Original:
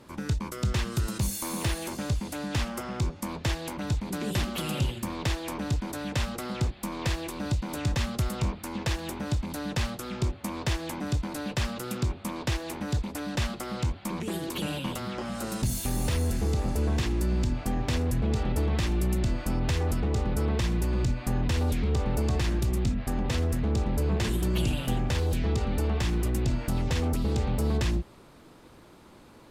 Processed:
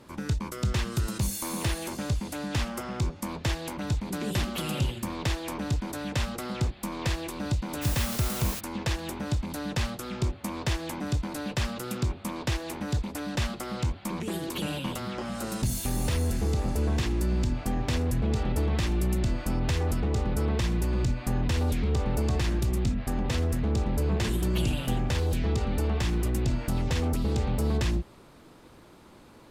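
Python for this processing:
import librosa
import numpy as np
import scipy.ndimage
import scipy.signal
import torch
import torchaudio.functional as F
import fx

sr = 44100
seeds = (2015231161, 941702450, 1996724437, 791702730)

y = fx.quant_dither(x, sr, seeds[0], bits=6, dither='triangular', at=(7.81, 8.59), fade=0.02)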